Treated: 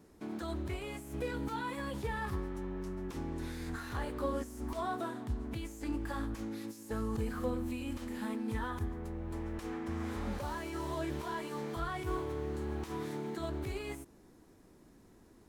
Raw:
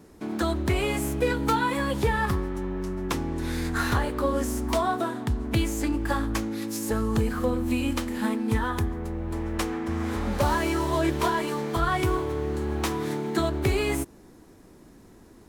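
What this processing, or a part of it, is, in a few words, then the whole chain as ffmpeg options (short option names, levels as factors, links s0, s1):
de-esser from a sidechain: -filter_complex "[0:a]asplit=2[s0][s1];[s1]highpass=4300,apad=whole_len=682768[s2];[s0][s2]sidechaincompress=threshold=0.00794:ratio=12:attack=0.6:release=34,volume=0.355"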